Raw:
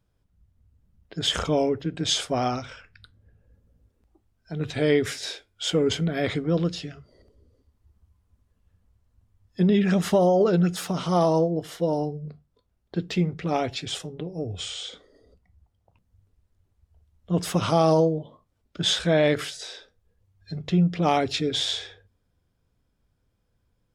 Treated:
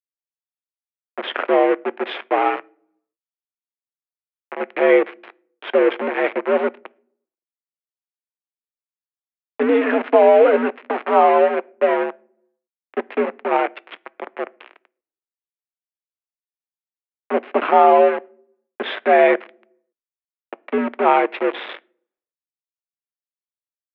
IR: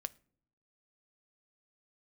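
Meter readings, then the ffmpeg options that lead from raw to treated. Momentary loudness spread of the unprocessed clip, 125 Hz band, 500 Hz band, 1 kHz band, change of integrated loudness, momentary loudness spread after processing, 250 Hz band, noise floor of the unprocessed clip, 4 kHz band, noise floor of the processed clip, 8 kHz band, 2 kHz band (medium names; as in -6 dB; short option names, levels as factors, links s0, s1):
15 LU, under -25 dB, +8.0 dB, +11.0 dB, +6.5 dB, 17 LU, 0.0 dB, -72 dBFS, -8.0 dB, under -85 dBFS, under -40 dB, +9.5 dB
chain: -filter_complex "[0:a]aeval=exprs='val(0)*gte(abs(val(0)),0.0562)':c=same,asplit=2[s0][s1];[1:a]atrim=start_sample=2205[s2];[s1][s2]afir=irnorm=-1:irlink=0,volume=1.78[s3];[s0][s3]amix=inputs=2:normalize=0,highpass=f=250:t=q:w=0.5412,highpass=f=250:t=q:w=1.307,lowpass=f=2500:t=q:w=0.5176,lowpass=f=2500:t=q:w=0.7071,lowpass=f=2500:t=q:w=1.932,afreqshift=67,volume=1.12"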